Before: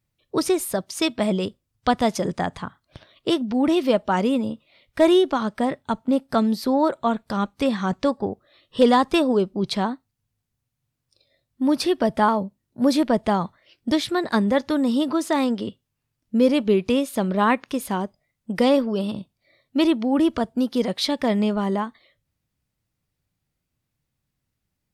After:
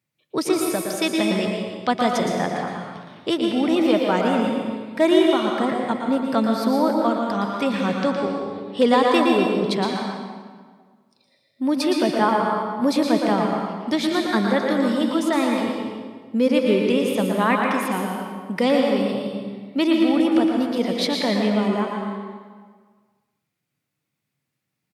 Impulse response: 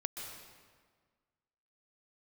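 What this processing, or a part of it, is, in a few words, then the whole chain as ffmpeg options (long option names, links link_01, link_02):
PA in a hall: -filter_complex "[0:a]highpass=frequency=130:width=0.5412,highpass=frequency=130:width=1.3066,equalizer=frequency=2200:width_type=o:width=0.62:gain=4.5,aecho=1:1:115:0.447[link_01];[1:a]atrim=start_sample=2205[link_02];[link_01][link_02]afir=irnorm=-1:irlink=0"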